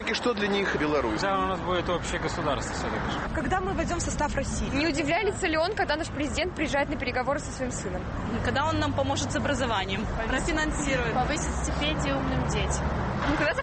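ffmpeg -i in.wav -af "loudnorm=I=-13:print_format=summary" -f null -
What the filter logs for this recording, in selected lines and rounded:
Input Integrated:    -27.5 LUFS
Input True Peak:     -14.6 dBTP
Input LRA:             1.3 LU
Input Threshold:     -37.5 LUFS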